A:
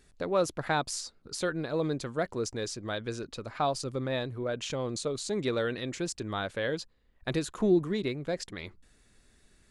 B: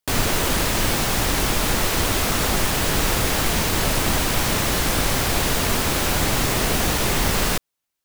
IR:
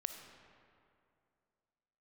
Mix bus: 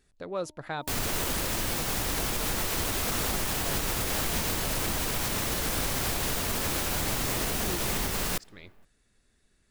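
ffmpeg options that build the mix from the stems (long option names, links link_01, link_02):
-filter_complex "[0:a]bandreject=frequency=305.1:width_type=h:width=4,bandreject=frequency=610.2:width_type=h:width=4,bandreject=frequency=915.3:width_type=h:width=4,volume=-6dB[link_01];[1:a]highshelf=frequency=7400:gain=5,adelay=800,volume=-1.5dB,asplit=2[link_02][link_03];[link_03]volume=-23.5dB[link_04];[2:a]atrim=start_sample=2205[link_05];[link_04][link_05]afir=irnorm=-1:irlink=0[link_06];[link_01][link_02][link_06]amix=inputs=3:normalize=0,alimiter=limit=-19dB:level=0:latency=1:release=351"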